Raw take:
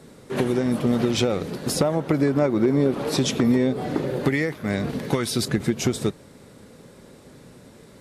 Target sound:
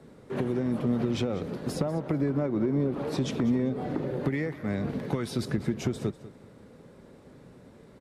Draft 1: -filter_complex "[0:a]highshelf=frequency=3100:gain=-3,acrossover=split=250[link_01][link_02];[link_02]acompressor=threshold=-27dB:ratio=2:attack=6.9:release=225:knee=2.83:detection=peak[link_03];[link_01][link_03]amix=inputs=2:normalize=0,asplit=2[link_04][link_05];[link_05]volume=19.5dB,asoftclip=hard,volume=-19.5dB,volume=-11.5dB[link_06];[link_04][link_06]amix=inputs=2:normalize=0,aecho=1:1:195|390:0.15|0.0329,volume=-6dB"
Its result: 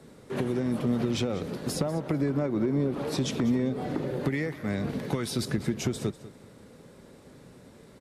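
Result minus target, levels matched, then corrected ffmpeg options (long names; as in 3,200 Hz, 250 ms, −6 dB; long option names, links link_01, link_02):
8,000 Hz band +6.5 dB
-filter_complex "[0:a]highshelf=frequency=3100:gain=-12,acrossover=split=250[link_01][link_02];[link_02]acompressor=threshold=-27dB:ratio=2:attack=6.9:release=225:knee=2.83:detection=peak[link_03];[link_01][link_03]amix=inputs=2:normalize=0,asplit=2[link_04][link_05];[link_05]volume=19.5dB,asoftclip=hard,volume=-19.5dB,volume=-11.5dB[link_06];[link_04][link_06]amix=inputs=2:normalize=0,aecho=1:1:195|390:0.15|0.0329,volume=-6dB"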